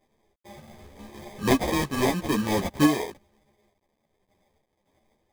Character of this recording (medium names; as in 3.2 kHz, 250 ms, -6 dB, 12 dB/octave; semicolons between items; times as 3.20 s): aliases and images of a low sample rate 1.4 kHz, jitter 0%; random-step tremolo; a quantiser's noise floor 12-bit, dither none; a shimmering, thickened sound